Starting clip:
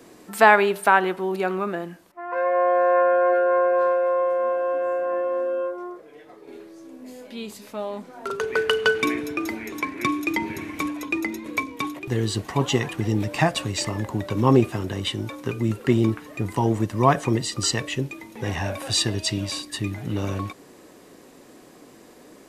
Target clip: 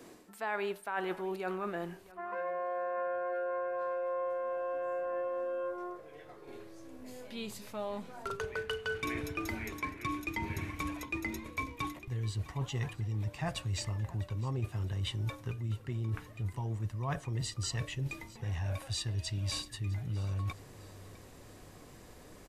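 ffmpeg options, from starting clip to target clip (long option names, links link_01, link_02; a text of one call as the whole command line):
ffmpeg -i in.wav -af "asubboost=boost=10:cutoff=85,areverse,acompressor=threshold=-28dB:ratio=10,areverse,aecho=1:1:655|1310|1965:0.1|0.038|0.0144,volume=-4.5dB" out.wav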